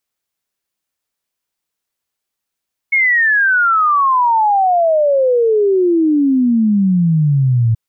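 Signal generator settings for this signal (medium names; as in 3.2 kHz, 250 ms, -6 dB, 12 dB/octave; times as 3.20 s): log sweep 2.2 kHz -> 110 Hz 4.83 s -9.5 dBFS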